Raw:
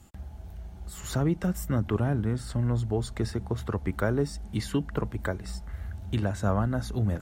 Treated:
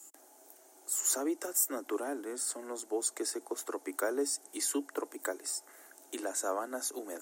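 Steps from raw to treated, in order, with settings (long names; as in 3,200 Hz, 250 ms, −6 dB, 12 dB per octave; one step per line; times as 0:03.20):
Butterworth high-pass 280 Hz 72 dB per octave
high shelf with overshoot 5,200 Hz +14 dB, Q 1.5
level −3.5 dB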